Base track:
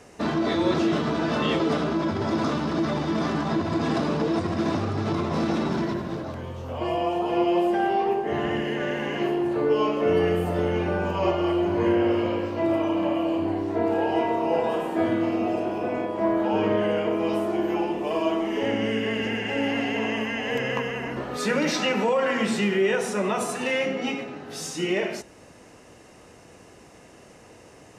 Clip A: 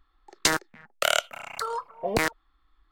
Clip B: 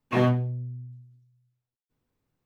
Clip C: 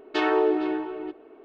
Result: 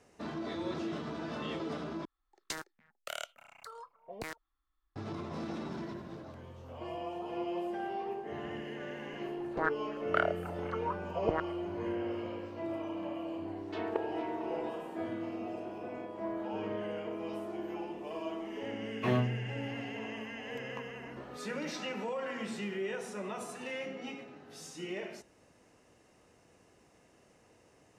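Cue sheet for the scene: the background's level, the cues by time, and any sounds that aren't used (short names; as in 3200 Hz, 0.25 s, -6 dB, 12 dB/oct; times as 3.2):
base track -14.5 dB
2.05 replace with A -17.5 dB
9.12 add A -9 dB + LFO low-pass sine 4 Hz 540–1600 Hz
13.58 add C -1.5 dB + level quantiser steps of 20 dB
18.91 add B -7.5 dB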